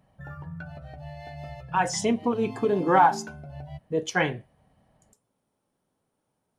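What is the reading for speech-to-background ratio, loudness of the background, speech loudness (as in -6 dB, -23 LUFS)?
15.5 dB, -40.0 LUFS, -24.5 LUFS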